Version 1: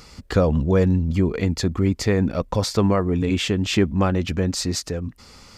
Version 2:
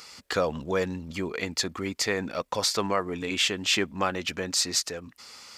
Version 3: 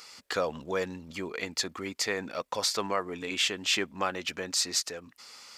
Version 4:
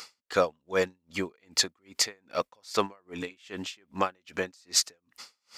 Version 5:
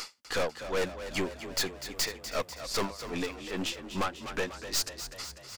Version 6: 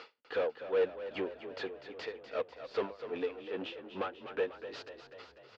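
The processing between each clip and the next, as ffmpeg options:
ffmpeg -i in.wav -af "highpass=frequency=1300:poles=1,volume=2.5dB" out.wav
ffmpeg -i in.wav -af "lowshelf=frequency=200:gain=-9,volume=-2.5dB" out.wav
ffmpeg -i in.wav -af "aeval=exprs='val(0)*pow(10,-39*(0.5-0.5*cos(2*PI*2.5*n/s))/20)':channel_layout=same,volume=6.5dB" out.wav
ffmpeg -i in.wav -filter_complex "[0:a]aeval=exprs='(tanh(50.1*val(0)+0.5)-tanh(0.5))/50.1':channel_layout=same,asplit=9[link_01][link_02][link_03][link_04][link_05][link_06][link_07][link_08][link_09];[link_02]adelay=247,afreqshift=33,volume=-11dB[link_10];[link_03]adelay=494,afreqshift=66,volume=-14.9dB[link_11];[link_04]adelay=741,afreqshift=99,volume=-18.8dB[link_12];[link_05]adelay=988,afreqshift=132,volume=-22.6dB[link_13];[link_06]adelay=1235,afreqshift=165,volume=-26.5dB[link_14];[link_07]adelay=1482,afreqshift=198,volume=-30.4dB[link_15];[link_08]adelay=1729,afreqshift=231,volume=-34.3dB[link_16];[link_09]adelay=1976,afreqshift=264,volume=-38.1dB[link_17];[link_01][link_10][link_11][link_12][link_13][link_14][link_15][link_16][link_17]amix=inputs=9:normalize=0,volume=7.5dB" out.wav
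ffmpeg -i in.wav -af "highpass=160,equalizer=frequency=170:width_type=q:width=4:gain=-9,equalizer=frequency=240:width_type=q:width=4:gain=-3,equalizer=frequency=460:width_type=q:width=4:gain=9,equalizer=frequency=1100:width_type=q:width=4:gain=-4,equalizer=frequency=2100:width_type=q:width=4:gain=-6,lowpass=frequency=3100:width=0.5412,lowpass=frequency=3100:width=1.3066,volume=-5dB" out.wav

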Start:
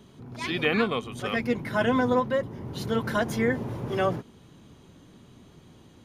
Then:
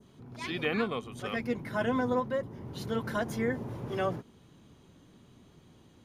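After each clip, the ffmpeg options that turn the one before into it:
ffmpeg -i in.wav -af "adynamicequalizer=threshold=0.00708:dfrequency=3000:dqfactor=0.9:tfrequency=3000:tqfactor=0.9:attack=5:release=100:ratio=0.375:range=2:mode=cutabove:tftype=bell,volume=-5.5dB" out.wav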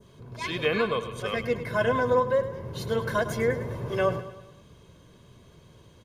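ffmpeg -i in.wav -filter_complex "[0:a]aecho=1:1:1.9:0.56,asplit=2[link_01][link_02];[link_02]aecho=0:1:104|208|312|416|520:0.237|0.119|0.0593|0.0296|0.0148[link_03];[link_01][link_03]amix=inputs=2:normalize=0,volume=4dB" out.wav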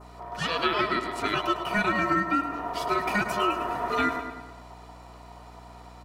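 ffmpeg -i in.wav -filter_complex "[0:a]aeval=exprs='val(0)*sin(2*PI*830*n/s)':channel_layout=same,acrossover=split=1100|4100[link_01][link_02][link_03];[link_01]acompressor=threshold=-34dB:ratio=4[link_04];[link_02]acompressor=threshold=-33dB:ratio=4[link_05];[link_03]acompressor=threshold=-49dB:ratio=4[link_06];[link_04][link_05][link_06]amix=inputs=3:normalize=0,aeval=exprs='val(0)+0.00178*(sin(2*PI*60*n/s)+sin(2*PI*2*60*n/s)/2+sin(2*PI*3*60*n/s)/3+sin(2*PI*4*60*n/s)/4+sin(2*PI*5*60*n/s)/5)':channel_layout=same,volume=7dB" out.wav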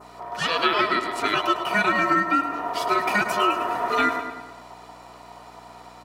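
ffmpeg -i in.wav -af "highpass=frequency=310:poles=1,volume=5dB" out.wav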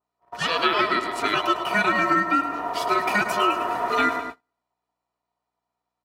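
ffmpeg -i in.wav -af "agate=range=-39dB:threshold=-31dB:ratio=16:detection=peak" out.wav

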